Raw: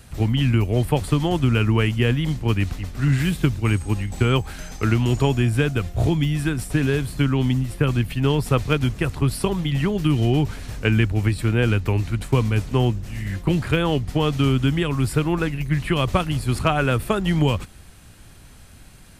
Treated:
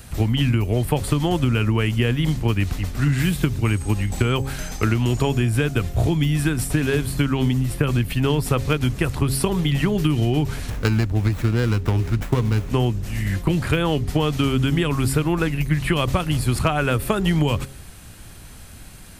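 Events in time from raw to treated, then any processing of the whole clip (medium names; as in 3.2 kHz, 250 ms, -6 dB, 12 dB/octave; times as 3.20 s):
10.70–12.70 s: sliding maximum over 9 samples
whole clip: treble shelf 11 kHz +6.5 dB; de-hum 134.9 Hz, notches 4; compression, threshold -20 dBFS; trim +4.5 dB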